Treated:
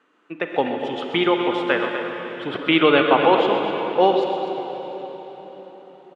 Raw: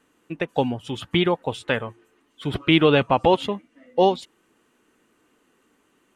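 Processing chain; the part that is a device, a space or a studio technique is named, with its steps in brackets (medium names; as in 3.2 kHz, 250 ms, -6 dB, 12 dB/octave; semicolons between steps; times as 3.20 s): station announcement (band-pass 300–3600 Hz; peaking EQ 1.3 kHz +6 dB 0.43 oct; loudspeakers at several distances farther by 44 m -11 dB, 85 m -11 dB; reverberation RT60 4.5 s, pre-delay 34 ms, DRR 3.5 dB); trim +1.5 dB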